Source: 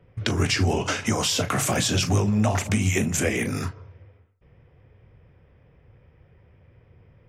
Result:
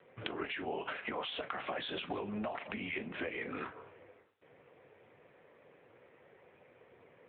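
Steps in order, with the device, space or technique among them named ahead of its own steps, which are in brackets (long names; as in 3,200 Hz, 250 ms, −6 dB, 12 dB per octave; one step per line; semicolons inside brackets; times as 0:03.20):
0:01.78–0:02.42: dynamic equaliser 3,700 Hz, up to +6 dB, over −44 dBFS, Q 3.8
voicemail (band-pass filter 400–3,300 Hz; downward compressor 10 to 1, threshold −39 dBFS, peak gain reduction 17.5 dB; level +4.5 dB; AMR narrowband 7.95 kbit/s 8,000 Hz)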